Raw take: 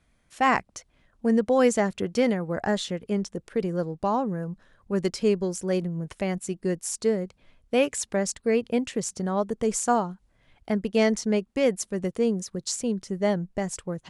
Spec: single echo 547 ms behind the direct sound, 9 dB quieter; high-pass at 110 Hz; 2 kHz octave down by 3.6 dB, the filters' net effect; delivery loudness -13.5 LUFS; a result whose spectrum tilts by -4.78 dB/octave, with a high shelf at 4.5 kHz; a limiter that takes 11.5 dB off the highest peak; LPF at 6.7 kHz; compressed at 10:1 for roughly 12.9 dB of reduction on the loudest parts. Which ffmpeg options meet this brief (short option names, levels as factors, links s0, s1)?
-af "highpass=110,lowpass=6700,equalizer=f=2000:t=o:g=-5.5,highshelf=f=4500:g=6.5,acompressor=threshold=0.0316:ratio=10,alimiter=level_in=1.78:limit=0.0631:level=0:latency=1,volume=0.562,aecho=1:1:547:0.355,volume=16.8"